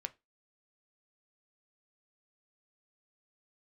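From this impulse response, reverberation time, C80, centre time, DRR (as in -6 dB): 0.20 s, 31.0 dB, 3 ms, 9.5 dB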